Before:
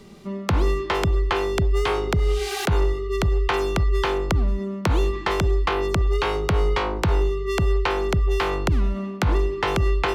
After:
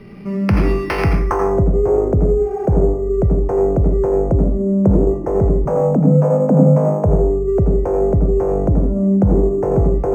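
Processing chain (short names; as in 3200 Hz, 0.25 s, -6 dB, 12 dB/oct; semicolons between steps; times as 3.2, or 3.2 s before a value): graphic EQ 125/1000/4000 Hz +5/-5/-10 dB; in parallel at -3 dB: limiter -22 dBFS, peak gain reduction 12 dB; on the sum: low-pass sweep 2600 Hz -> 570 Hz, 0.99–1.58; 5.65–7.05 frequency shift +100 Hz; on a send at -2.5 dB: reverb, pre-delay 76 ms; on the sum: decimation joined by straight lines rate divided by 6×; gain +1.5 dB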